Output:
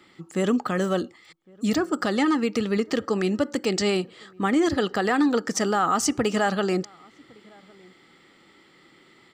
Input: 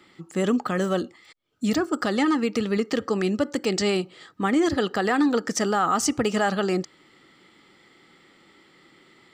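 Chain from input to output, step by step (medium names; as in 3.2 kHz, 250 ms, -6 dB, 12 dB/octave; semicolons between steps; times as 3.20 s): echo from a far wall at 190 m, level -27 dB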